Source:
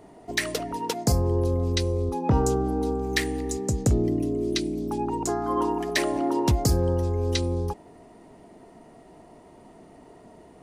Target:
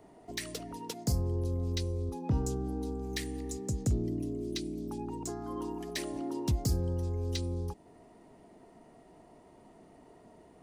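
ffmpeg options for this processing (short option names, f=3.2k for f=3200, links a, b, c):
-filter_complex "[0:a]acrossover=split=320|3000[a][b][c];[b]acompressor=threshold=-40dB:ratio=2.5[d];[a][d][c]amix=inputs=3:normalize=0,acrossover=split=3400[e][f];[f]asoftclip=type=tanh:threshold=-24dB[g];[e][g]amix=inputs=2:normalize=0,volume=-7dB"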